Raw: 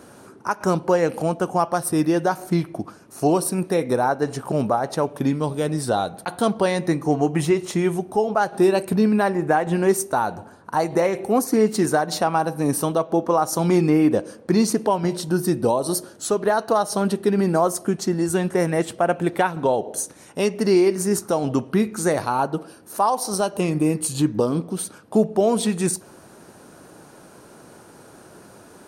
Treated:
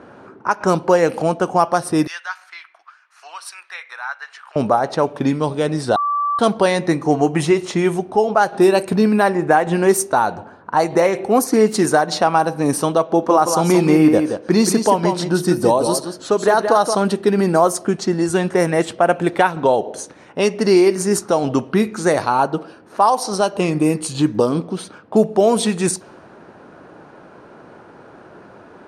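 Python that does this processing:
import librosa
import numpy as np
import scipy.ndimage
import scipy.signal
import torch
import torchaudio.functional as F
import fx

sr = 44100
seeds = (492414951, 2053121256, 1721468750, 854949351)

y = fx.highpass(x, sr, hz=1400.0, slope=24, at=(2.07, 4.56))
y = fx.echo_single(y, sr, ms=174, db=-7.0, at=(13.05, 16.95))
y = fx.edit(y, sr, fx.bleep(start_s=5.96, length_s=0.43, hz=1160.0, db=-22.0), tone=tone)
y = fx.env_lowpass(y, sr, base_hz=2100.0, full_db=-14.0)
y = fx.low_shelf(y, sr, hz=270.0, db=-5.5)
y = F.gain(torch.from_numpy(y), 6.0).numpy()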